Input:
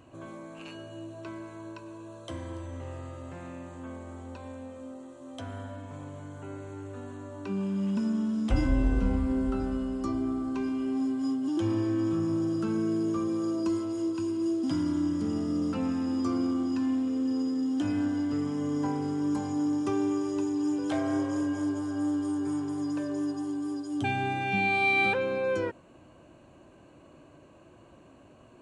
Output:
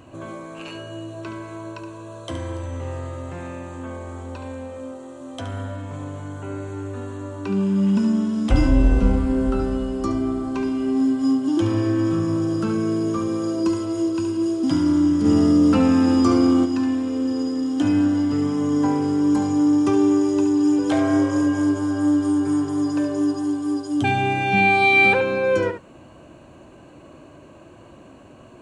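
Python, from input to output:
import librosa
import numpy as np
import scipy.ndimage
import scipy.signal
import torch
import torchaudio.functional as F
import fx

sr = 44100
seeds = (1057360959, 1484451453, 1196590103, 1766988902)

y = x + 10.0 ** (-9.0 / 20.0) * np.pad(x, (int(71 * sr / 1000.0), 0))[:len(x)]
y = fx.env_flatten(y, sr, amount_pct=50, at=(15.24, 16.64), fade=0.02)
y = y * 10.0 ** (8.5 / 20.0)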